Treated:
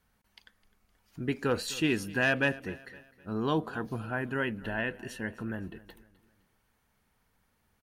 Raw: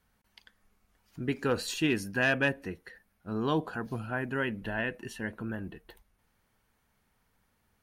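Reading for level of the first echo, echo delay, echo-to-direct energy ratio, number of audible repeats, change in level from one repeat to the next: −19.5 dB, 257 ms, −18.5 dB, 3, −7.5 dB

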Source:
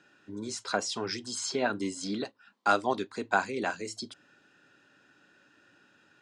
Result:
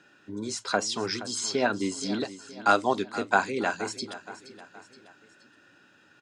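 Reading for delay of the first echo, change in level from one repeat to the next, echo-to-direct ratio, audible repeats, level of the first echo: 472 ms, −6.0 dB, −14.0 dB, 3, −15.0 dB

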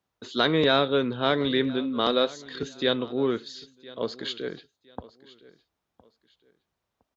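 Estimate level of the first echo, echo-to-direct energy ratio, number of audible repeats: −20.5 dB, −20.0 dB, 2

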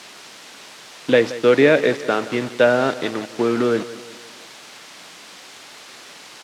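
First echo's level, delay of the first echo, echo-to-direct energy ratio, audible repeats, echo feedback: −16.0 dB, 174 ms, −15.0 dB, 3, 48%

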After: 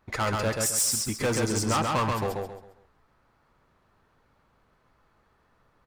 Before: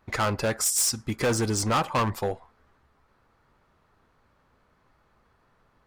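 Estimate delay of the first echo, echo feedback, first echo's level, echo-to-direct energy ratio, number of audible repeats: 134 ms, 33%, −3.0 dB, −2.5 dB, 4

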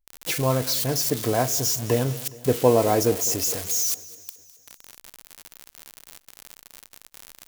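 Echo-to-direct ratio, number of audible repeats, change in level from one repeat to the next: −17.0 dB, 4, −4.5 dB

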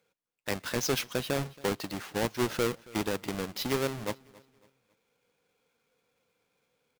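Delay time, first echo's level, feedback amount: 275 ms, −22.5 dB, 37%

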